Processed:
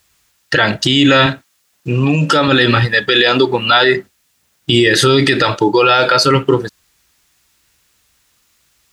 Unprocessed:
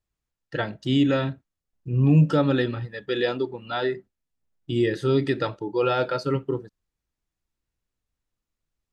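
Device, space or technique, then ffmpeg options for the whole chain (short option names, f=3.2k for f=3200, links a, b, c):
mastering chain: -filter_complex "[0:a]highpass=53,equalizer=f=1.2k:t=o:w=1.9:g=2,acompressor=threshold=-27dB:ratio=1.5,tiltshelf=f=1.2k:g=-7.5,alimiter=level_in=26.5dB:limit=-1dB:release=50:level=0:latency=1,asettb=1/sr,asplit=3[a][b][c];[a]atrim=end=1.264[d];[b]atrim=start=1.26:end=2.48,asetpts=PTS-STARTPTS,afade=t=in:d=0.004:c=qsin,afade=t=out:st=1.216:d=0.004:c=qsin,highpass=f=270:p=1[e];[c]atrim=start=2.476[f];[d][e]acrossfade=d=0.004:c1=hsin:c2=qsin[g];[g][f]acrossfade=d=0.004:c1=qsin:c2=hsin,volume=-1dB"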